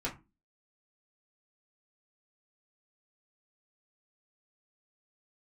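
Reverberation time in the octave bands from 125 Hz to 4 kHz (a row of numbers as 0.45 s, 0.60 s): 0.30 s, 0.45 s, 0.30 s, 0.25 s, 0.20 s, 0.15 s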